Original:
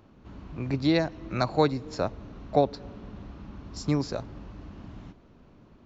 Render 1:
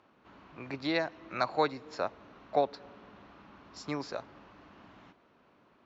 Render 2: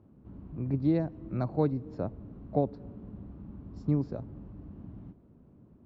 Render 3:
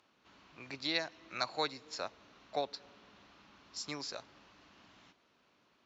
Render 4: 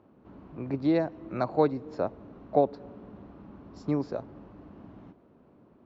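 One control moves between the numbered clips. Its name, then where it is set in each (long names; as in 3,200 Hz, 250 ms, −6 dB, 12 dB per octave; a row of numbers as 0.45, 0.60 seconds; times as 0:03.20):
resonant band-pass, frequency: 1,600, 150, 4,400, 460 Hertz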